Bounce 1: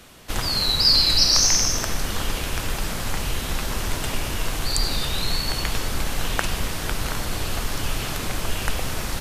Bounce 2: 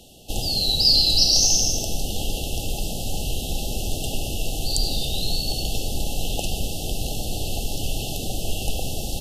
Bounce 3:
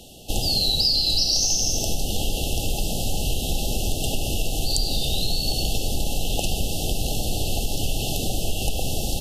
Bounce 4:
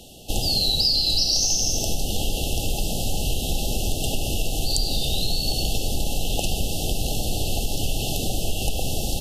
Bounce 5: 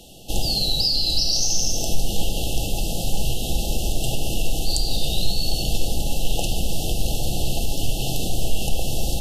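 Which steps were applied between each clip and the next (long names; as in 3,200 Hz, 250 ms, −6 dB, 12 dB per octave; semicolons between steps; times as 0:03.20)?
brick-wall band-stop 850–2,600 Hz
downward compressor, threshold −21 dBFS, peak gain reduction 8.5 dB; level +3.5 dB
no processing that can be heard
rectangular room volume 330 cubic metres, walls furnished, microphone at 0.74 metres; level −1 dB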